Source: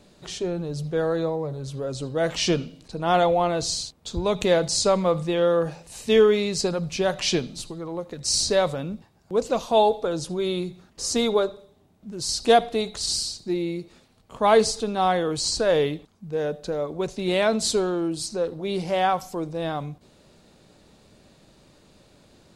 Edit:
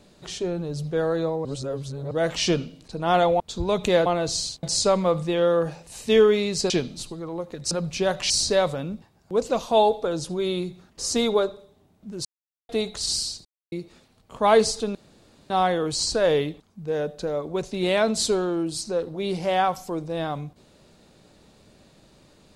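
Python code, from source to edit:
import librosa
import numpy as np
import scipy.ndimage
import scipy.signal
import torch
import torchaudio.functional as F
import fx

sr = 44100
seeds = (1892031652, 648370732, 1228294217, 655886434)

y = fx.edit(x, sr, fx.reverse_span(start_s=1.45, length_s=0.66),
    fx.move(start_s=3.4, length_s=0.57, to_s=4.63),
    fx.move(start_s=6.7, length_s=0.59, to_s=8.3),
    fx.silence(start_s=12.25, length_s=0.44),
    fx.silence(start_s=13.45, length_s=0.27),
    fx.insert_room_tone(at_s=14.95, length_s=0.55), tone=tone)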